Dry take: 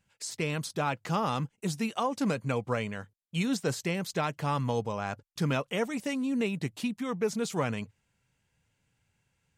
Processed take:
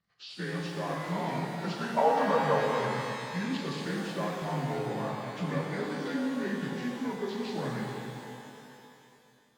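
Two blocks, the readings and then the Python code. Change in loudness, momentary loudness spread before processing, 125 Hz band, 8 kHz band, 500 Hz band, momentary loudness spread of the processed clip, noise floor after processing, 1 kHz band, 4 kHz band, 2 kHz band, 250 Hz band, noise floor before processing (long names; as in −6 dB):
−0.5 dB, 5 LU, −2.5 dB, −8.0 dB, +1.5 dB, 13 LU, −62 dBFS, +2.5 dB, −1.5 dB, +0.5 dB, −1.5 dB, −77 dBFS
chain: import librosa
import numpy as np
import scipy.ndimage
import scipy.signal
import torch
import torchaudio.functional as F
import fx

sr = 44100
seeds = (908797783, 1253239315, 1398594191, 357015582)

p1 = fx.partial_stretch(x, sr, pct=84)
p2 = fx.level_steps(p1, sr, step_db=18)
p3 = p1 + F.gain(torch.from_numpy(p2), 1.0).numpy()
p4 = fx.spec_box(p3, sr, start_s=1.47, length_s=1.16, low_hz=450.0, high_hz=1600.0, gain_db=12)
p5 = fx.rev_shimmer(p4, sr, seeds[0], rt60_s=2.7, semitones=12, shimmer_db=-8, drr_db=-1.0)
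y = F.gain(torch.from_numpy(p5), -8.5).numpy()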